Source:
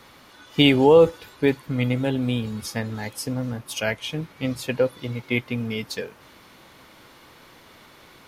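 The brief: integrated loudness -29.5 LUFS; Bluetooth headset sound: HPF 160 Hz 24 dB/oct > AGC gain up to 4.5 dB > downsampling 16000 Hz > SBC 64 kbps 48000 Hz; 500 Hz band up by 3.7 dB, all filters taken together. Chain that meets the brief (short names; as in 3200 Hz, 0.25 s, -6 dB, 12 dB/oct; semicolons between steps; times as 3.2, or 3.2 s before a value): HPF 160 Hz 24 dB/oct; bell 500 Hz +4 dB; AGC gain up to 4.5 dB; downsampling 16000 Hz; gain -8.5 dB; SBC 64 kbps 48000 Hz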